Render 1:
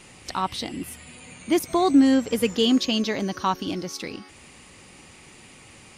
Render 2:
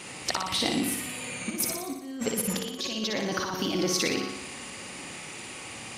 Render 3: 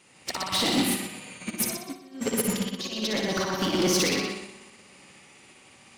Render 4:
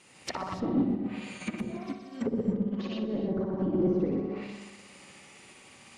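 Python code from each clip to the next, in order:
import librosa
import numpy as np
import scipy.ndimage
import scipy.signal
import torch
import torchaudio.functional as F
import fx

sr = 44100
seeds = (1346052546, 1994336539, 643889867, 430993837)

y1 = fx.highpass(x, sr, hz=210.0, slope=6)
y1 = fx.over_compress(y1, sr, threshold_db=-33.0, ratio=-1.0)
y1 = fx.room_flutter(y1, sr, wall_m=10.2, rt60_s=0.8)
y2 = fx.echo_bbd(y1, sr, ms=124, stages=4096, feedback_pct=53, wet_db=-4)
y2 = np.clip(10.0 ** (24.0 / 20.0) * y2, -1.0, 1.0) / 10.0 ** (24.0 / 20.0)
y2 = fx.upward_expand(y2, sr, threshold_db=-41.0, expansion=2.5)
y2 = F.gain(torch.from_numpy(y2), 6.0).numpy()
y3 = fx.env_lowpass_down(y2, sr, base_hz=430.0, full_db=-25.0)
y3 = fx.rev_gated(y3, sr, seeds[0], gate_ms=320, shape='rising', drr_db=11.5)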